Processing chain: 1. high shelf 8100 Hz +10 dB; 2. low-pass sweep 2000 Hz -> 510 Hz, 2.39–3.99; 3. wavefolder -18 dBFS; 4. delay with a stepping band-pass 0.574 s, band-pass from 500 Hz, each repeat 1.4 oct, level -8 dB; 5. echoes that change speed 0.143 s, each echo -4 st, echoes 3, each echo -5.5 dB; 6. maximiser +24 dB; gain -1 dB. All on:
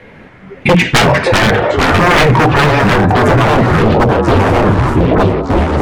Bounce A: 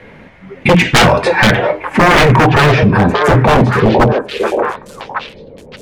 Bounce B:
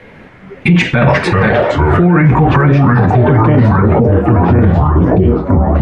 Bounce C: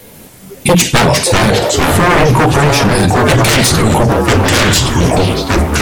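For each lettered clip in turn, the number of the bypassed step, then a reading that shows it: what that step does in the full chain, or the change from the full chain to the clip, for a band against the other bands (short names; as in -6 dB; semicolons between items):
5, momentary loudness spread change +9 LU; 3, 125 Hz band +6.0 dB; 2, 8 kHz band +13.0 dB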